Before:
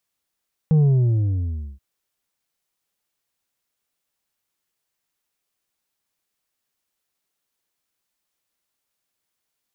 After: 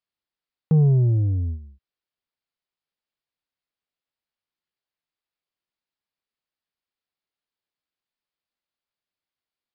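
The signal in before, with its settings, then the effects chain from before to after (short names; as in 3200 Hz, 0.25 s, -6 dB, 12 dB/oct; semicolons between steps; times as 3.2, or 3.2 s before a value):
sub drop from 160 Hz, over 1.08 s, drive 5 dB, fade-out 1.01 s, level -13 dB
downsampling 11025 Hz; gate -28 dBFS, range -9 dB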